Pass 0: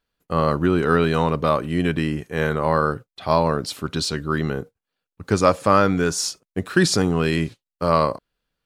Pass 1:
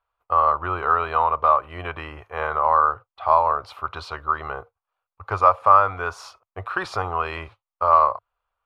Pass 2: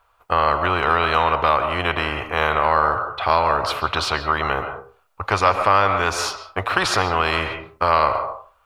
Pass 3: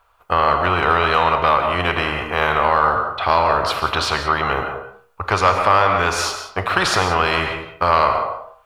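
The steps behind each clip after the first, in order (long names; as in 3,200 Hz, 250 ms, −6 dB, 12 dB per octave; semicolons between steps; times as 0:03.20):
drawn EQ curve 100 Hz 0 dB, 160 Hz −20 dB, 250 Hz −20 dB, 700 Hz +9 dB, 1,200 Hz +15 dB, 1,700 Hz −2 dB, 2,400 Hz +1 dB, 7,700 Hz −21 dB, 12,000 Hz −16 dB; in parallel at 0 dB: downward compressor, threshold −16 dBFS, peak gain reduction 14.5 dB; on the sum: level −10 dB
convolution reverb RT60 0.40 s, pre-delay 95 ms, DRR 11.5 dB; every bin compressed towards the loudest bin 2 to 1
in parallel at −8 dB: soft clipping −11 dBFS, distortion −14 dB; on the sum: reverb whose tail is shaped and stops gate 210 ms flat, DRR 7.5 dB; level −1 dB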